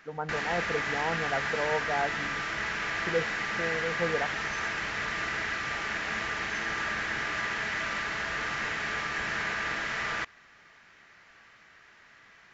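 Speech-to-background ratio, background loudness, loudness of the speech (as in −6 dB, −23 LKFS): −3.0 dB, −31.0 LKFS, −34.0 LKFS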